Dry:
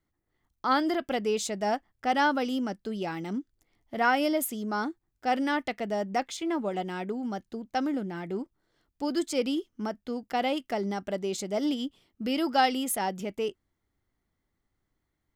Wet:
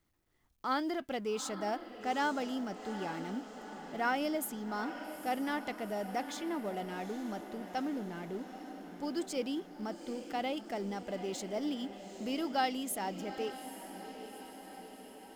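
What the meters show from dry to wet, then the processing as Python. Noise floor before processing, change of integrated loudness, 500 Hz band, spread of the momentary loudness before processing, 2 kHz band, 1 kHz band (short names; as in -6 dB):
-81 dBFS, -7.5 dB, -7.0 dB, 10 LU, -7.5 dB, -7.5 dB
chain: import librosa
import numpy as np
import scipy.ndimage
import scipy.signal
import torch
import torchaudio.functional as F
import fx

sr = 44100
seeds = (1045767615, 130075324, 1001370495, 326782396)

p1 = fx.law_mismatch(x, sr, coded='mu')
p2 = p1 + fx.echo_diffused(p1, sr, ms=840, feedback_pct=63, wet_db=-11.0, dry=0)
y = p2 * 10.0 ** (-8.5 / 20.0)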